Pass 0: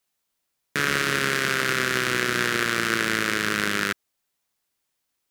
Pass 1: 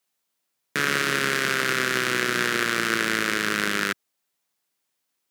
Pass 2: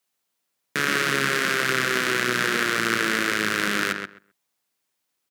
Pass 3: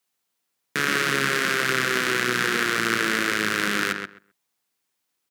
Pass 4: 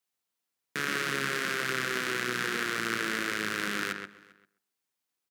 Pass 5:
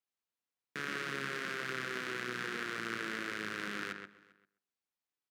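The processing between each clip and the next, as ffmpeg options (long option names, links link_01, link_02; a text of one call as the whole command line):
ffmpeg -i in.wav -af "highpass=130" out.wav
ffmpeg -i in.wav -filter_complex "[0:a]asplit=2[link_01][link_02];[link_02]adelay=130,lowpass=frequency=2500:poles=1,volume=-5dB,asplit=2[link_03][link_04];[link_04]adelay=130,lowpass=frequency=2500:poles=1,volume=0.17,asplit=2[link_05][link_06];[link_06]adelay=130,lowpass=frequency=2500:poles=1,volume=0.17[link_07];[link_01][link_03][link_05][link_07]amix=inputs=4:normalize=0" out.wav
ffmpeg -i in.wav -af "bandreject=frequency=600:width=12" out.wav
ffmpeg -i in.wav -filter_complex "[0:a]asplit=2[link_01][link_02];[link_02]adelay=396.5,volume=-23dB,highshelf=frequency=4000:gain=-8.92[link_03];[link_01][link_03]amix=inputs=2:normalize=0,volume=-8dB" out.wav
ffmpeg -i in.wav -af "highshelf=frequency=6800:gain=-10.5,volume=-7dB" out.wav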